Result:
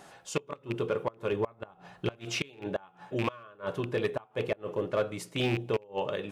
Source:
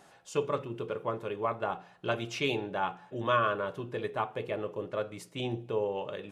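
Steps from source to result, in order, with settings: rattling part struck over -36 dBFS, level -29 dBFS; flipped gate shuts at -21 dBFS, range -28 dB; 1.32–2.19 low shelf 180 Hz +7.5 dB; in parallel at -9 dB: wavefolder -28.5 dBFS; on the sum: gain +3 dB

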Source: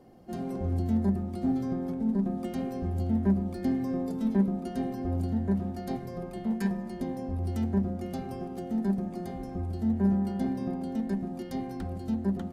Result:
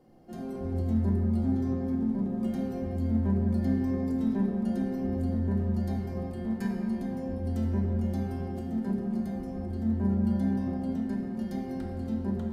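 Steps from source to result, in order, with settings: shoebox room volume 220 m³, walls hard, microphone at 0.58 m; gain -5.5 dB

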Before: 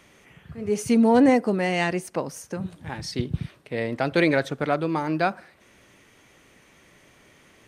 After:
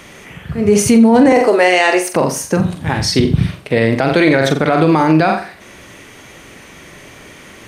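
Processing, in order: 1.32–2.14 HPF 370 Hz 24 dB/oct; on a send: flutter echo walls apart 7.6 m, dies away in 0.34 s; on the sum: maximiser +17.5 dB; gain -1 dB

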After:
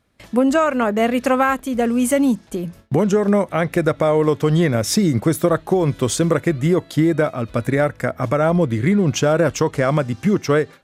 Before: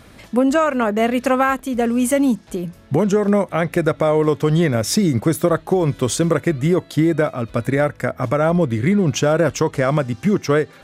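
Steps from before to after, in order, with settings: gate with hold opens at -31 dBFS

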